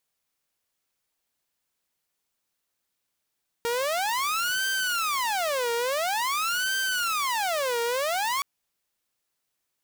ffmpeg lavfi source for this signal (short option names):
-f lavfi -i "aevalsrc='0.0794*(2*mod((1013.5*t-546.5/(2*PI*0.48)*sin(2*PI*0.48*t)),1)-1)':d=4.77:s=44100"